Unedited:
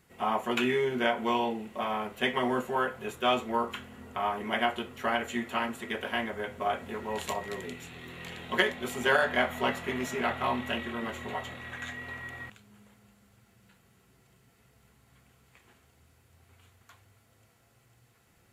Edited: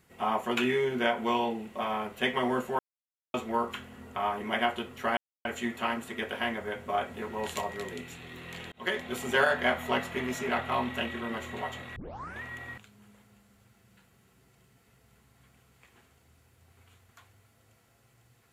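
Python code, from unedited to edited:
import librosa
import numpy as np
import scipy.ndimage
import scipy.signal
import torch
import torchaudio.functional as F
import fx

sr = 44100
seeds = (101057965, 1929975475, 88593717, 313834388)

y = fx.edit(x, sr, fx.silence(start_s=2.79, length_s=0.55),
    fx.insert_silence(at_s=5.17, length_s=0.28),
    fx.fade_in_span(start_s=8.44, length_s=0.33),
    fx.tape_start(start_s=11.68, length_s=0.46), tone=tone)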